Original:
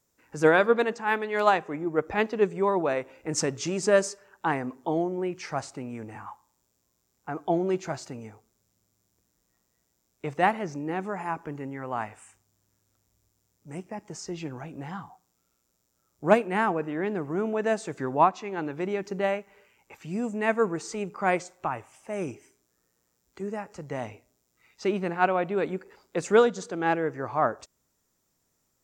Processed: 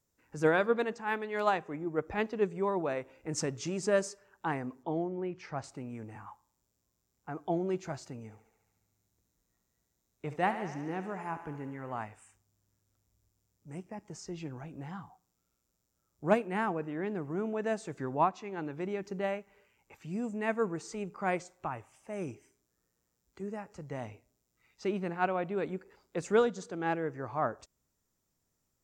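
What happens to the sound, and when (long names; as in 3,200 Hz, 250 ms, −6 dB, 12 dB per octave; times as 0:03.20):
0:04.83–0:05.64: high-frequency loss of the air 130 metres
0:08.23–0:11.99: feedback echo with a high-pass in the loop 71 ms, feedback 75%, high-pass 340 Hz, level −11 dB
whole clip: low-shelf EQ 160 Hz +7.5 dB; level −7.5 dB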